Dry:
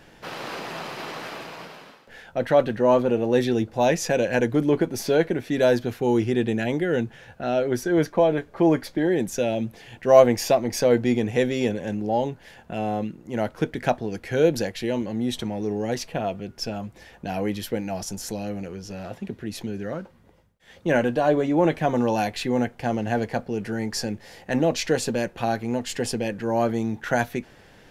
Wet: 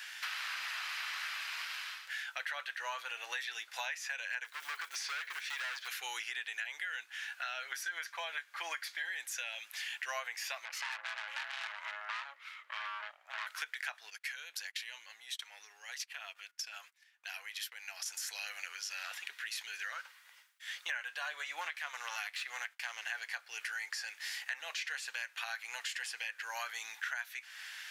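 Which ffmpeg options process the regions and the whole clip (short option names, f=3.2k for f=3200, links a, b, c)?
-filter_complex "[0:a]asettb=1/sr,asplit=3[a][b][c];[a]atrim=end=4.444[d];[b]atrim=start=4.44:end=5.88,asetpts=PTS-STARTPTS,afade=t=in:d=0.004:c=qsin,afade=t=out:st=1.436:d=0.004:c=qsin,highpass=120,lowpass=6.7k,acrusher=bits=7:mode=log:mix=0:aa=0.000001,asoftclip=type=hard:threshold=-24dB[e];[c]atrim=start=5.876[f];[d][e]acrossfade=d=0.004:c1=hsin:c2=qsin[g];[g][f]acrossfade=d=0.004:c1=qsin:c2=hsin,asettb=1/sr,asplit=3[h][i][j];[h]atrim=end=10.654[k];[i]atrim=start=10.65:end=13.47,asetpts=PTS-STARTPTS,afade=t=in:d=0.004:c=qsin,afade=t=out:st=2.816:d=0.004:c=qsin,bass=f=250:g=6,treble=f=4k:g=-14,aeval=exprs='val(0)*sin(2*PI*420*n/s)':c=same,aeval=exprs='(tanh(25.1*val(0)+0.75)-tanh(0.75))/25.1':c=same[l];[j]atrim=start=13.466[m];[k][l]acrossfade=d=0.004:c1=hsin:c2=qsin[n];[n][m]acrossfade=d=0.004:c1=qsin:c2=hsin,asettb=1/sr,asplit=3[o][p][q];[o]atrim=end=14.104[r];[p]atrim=start=14.1:end=18.06,asetpts=PTS-STARTPTS,afade=t=in:d=0.004:c=qsin,afade=t=out:st=3.956:d=0.004:c=qsin,acompressor=threshold=-37dB:ratio=6:attack=3.2:release=140:knee=1:detection=peak,agate=range=-28dB:threshold=-43dB:ratio=16:release=100:detection=peak[s];[q]atrim=start=18.056[t];[r][s]acrossfade=d=0.004:c1=hsin:c2=qsin[u];[u][t]acrossfade=d=0.004:c1=qsin:c2=hsin,asettb=1/sr,asplit=3[v][w][x];[v]atrim=end=21.614[y];[w]atrim=start=21.61:end=23.05,asetpts=PTS-STARTPTS,afade=t=in:d=0.004:c=qsin,afade=t=out:st=1.436:d=0.004:c=qsin,aeval=exprs='if(lt(val(0),0),0.447*val(0),val(0))':c=same,agate=range=-33dB:threshold=-43dB:ratio=3:release=100:detection=peak[z];[x]atrim=start=23.046[aa];[y][z]acrossfade=d=0.004:c1=hsin:c2=qsin[ab];[ab][aa]acrossfade=d=0.004:c1=qsin:c2=hsin,acrossover=split=2500[ac][ad];[ad]acompressor=threshold=-42dB:ratio=4:attack=1:release=60[ae];[ac][ae]amix=inputs=2:normalize=0,highpass=f=1.5k:w=0.5412,highpass=f=1.5k:w=1.3066,acompressor=threshold=-48dB:ratio=6,volume=10.5dB"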